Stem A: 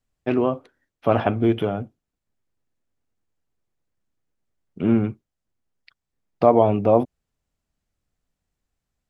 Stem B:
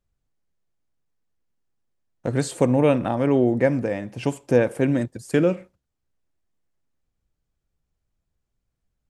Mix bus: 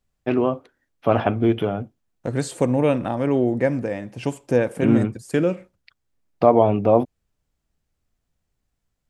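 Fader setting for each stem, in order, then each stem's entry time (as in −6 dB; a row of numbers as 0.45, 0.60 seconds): +0.5, −1.0 decibels; 0.00, 0.00 seconds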